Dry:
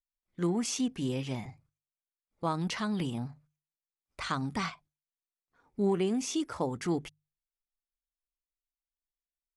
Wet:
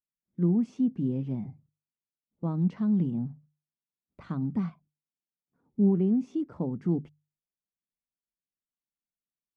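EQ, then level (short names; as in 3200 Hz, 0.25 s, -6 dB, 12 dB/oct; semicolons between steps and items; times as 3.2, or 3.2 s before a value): band-pass 190 Hz, Q 1.9; +8.5 dB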